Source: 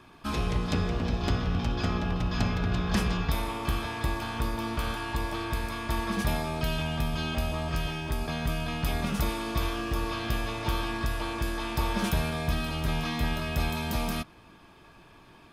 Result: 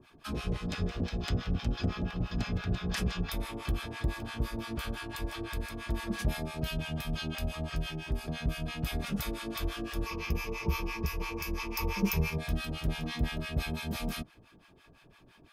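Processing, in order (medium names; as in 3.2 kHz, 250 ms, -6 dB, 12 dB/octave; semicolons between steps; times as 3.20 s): peaking EQ 980 Hz -6 dB 0.76 oct; harmonic tremolo 5.9 Hz, depth 100%, crossover 770 Hz; 10.06–12.38 s: rippled EQ curve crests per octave 0.8, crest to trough 14 dB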